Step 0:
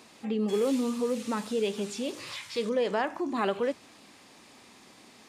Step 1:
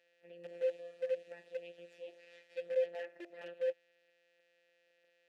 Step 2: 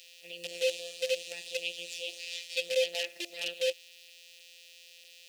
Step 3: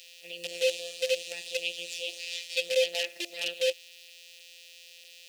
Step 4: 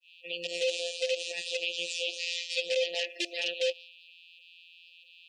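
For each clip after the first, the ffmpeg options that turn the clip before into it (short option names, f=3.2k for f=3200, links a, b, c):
-filter_complex "[0:a]afftfilt=real='hypot(re,im)*cos(PI*b)':imag='0':win_size=1024:overlap=0.75,acrusher=bits=6:dc=4:mix=0:aa=0.000001,asplit=3[a][b][c];[a]bandpass=f=530:t=q:w=8,volume=0dB[d];[b]bandpass=f=1.84k:t=q:w=8,volume=-6dB[e];[c]bandpass=f=2.48k:t=q:w=8,volume=-9dB[f];[d][e][f]amix=inputs=3:normalize=0,volume=-2dB"
-af "aexciter=amount=12.3:drive=8.1:freq=2.6k,volume=3.5dB"
-af "lowshelf=f=150:g=-4,volume=3dB"
-af "alimiter=level_in=0.5dB:limit=-24dB:level=0:latency=1:release=69,volume=-0.5dB,agate=range=-33dB:threshold=-47dB:ratio=3:detection=peak,afftdn=nr=30:nf=-48,volume=5dB"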